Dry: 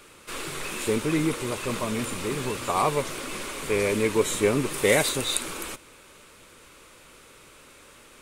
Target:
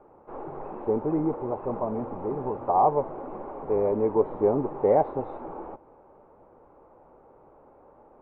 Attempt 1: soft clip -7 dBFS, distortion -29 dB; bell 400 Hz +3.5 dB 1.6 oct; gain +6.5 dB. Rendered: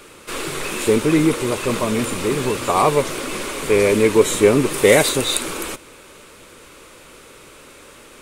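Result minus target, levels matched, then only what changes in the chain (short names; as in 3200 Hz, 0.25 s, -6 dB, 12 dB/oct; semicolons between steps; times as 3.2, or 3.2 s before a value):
1000 Hz band -5.5 dB
add after soft clip: ladder low-pass 880 Hz, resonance 70%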